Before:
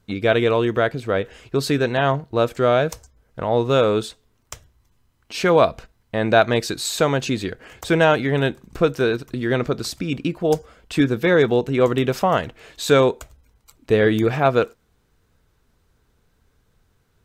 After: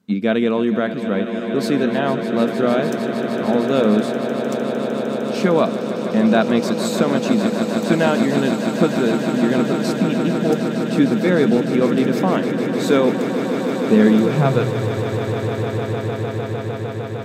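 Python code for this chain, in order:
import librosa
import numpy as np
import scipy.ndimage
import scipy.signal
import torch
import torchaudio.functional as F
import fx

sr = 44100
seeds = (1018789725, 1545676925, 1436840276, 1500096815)

y = fx.echo_swell(x, sr, ms=152, loudest=8, wet_db=-12)
y = fx.filter_sweep_highpass(y, sr, from_hz=210.0, to_hz=99.0, start_s=14.07, end_s=14.97, q=7.0)
y = y * librosa.db_to_amplitude(-4.0)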